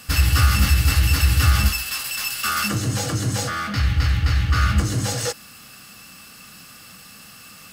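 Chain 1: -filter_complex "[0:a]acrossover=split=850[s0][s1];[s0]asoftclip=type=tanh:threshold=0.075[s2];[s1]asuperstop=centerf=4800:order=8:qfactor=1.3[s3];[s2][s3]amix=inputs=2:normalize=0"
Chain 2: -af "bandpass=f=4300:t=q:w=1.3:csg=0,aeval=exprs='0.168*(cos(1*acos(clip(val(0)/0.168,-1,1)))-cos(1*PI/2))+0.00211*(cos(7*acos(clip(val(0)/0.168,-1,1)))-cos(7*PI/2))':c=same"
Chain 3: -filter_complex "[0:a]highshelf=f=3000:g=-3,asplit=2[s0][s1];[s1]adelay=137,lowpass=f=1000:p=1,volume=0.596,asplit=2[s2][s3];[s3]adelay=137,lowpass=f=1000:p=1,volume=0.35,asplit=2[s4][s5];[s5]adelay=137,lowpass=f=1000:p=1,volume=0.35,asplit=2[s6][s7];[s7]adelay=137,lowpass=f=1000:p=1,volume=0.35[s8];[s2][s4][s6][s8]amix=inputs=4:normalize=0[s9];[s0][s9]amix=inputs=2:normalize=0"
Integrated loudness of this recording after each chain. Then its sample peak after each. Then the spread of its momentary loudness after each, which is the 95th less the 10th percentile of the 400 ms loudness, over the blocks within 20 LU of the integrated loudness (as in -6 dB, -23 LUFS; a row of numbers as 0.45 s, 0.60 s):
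-24.5 LUFS, -29.5 LUFS, -19.5 LUFS; -11.0 dBFS, -15.5 dBFS, -4.0 dBFS; 20 LU, 20 LU, 10 LU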